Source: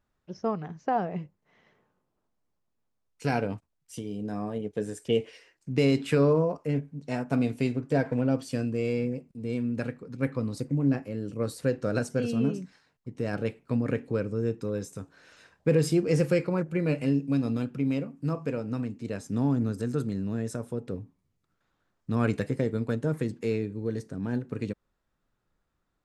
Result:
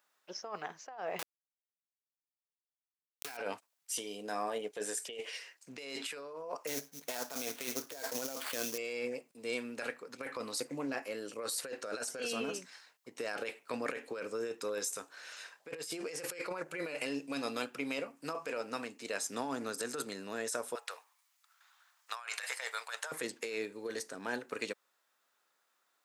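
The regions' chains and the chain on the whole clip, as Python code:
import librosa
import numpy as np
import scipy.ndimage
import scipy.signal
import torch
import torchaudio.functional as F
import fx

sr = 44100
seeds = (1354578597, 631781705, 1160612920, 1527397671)

y = fx.chain(x, sr, fx.peak_eq(hz=550.0, db=-15.0, octaves=0.21),
    fx.quant_dither(seeds[0], bits=6, dither='none'),
    fx.env_flatten(amount_pct=70), at=(1.19, 3.37))
y = fx.chain(y, sr, fx.air_absorb(metres=51.0),
    fx.sample_hold(seeds[1], rate_hz=6100.0, jitter_pct=20), at=(6.67, 8.78))
y = fx.chain(y, sr, fx.highpass(hz=830.0, slope=24),
    fx.over_compress(threshold_db=-47.0, ratio=-1.0), at=(20.75, 23.12))
y = scipy.signal.sosfilt(scipy.signal.butter(2, 580.0, 'highpass', fs=sr, output='sos'), y)
y = fx.tilt_eq(y, sr, slope=2.0)
y = fx.over_compress(y, sr, threshold_db=-40.0, ratio=-1.0)
y = F.gain(torch.from_numpy(y), 1.5).numpy()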